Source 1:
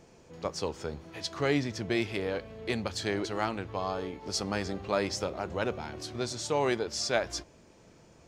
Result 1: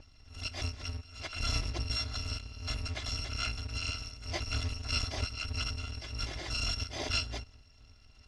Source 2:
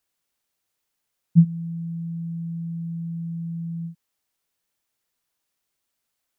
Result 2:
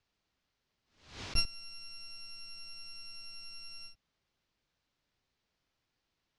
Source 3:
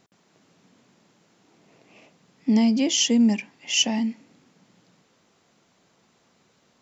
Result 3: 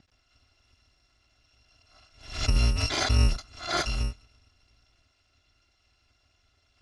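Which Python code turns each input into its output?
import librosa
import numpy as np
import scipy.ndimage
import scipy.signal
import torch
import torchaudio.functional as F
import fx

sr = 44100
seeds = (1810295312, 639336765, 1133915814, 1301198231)

y = fx.bit_reversed(x, sr, seeds[0], block=256)
y = scipy.signal.sosfilt(scipy.signal.butter(4, 5300.0, 'lowpass', fs=sr, output='sos'), y)
y = fx.low_shelf(y, sr, hz=220.0, db=12.0)
y = fx.pre_swell(y, sr, db_per_s=110.0)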